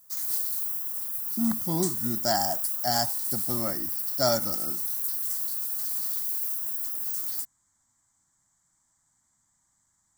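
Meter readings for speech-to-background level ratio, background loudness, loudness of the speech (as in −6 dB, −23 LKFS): −3.0 dB, −27.0 LKFS, −30.0 LKFS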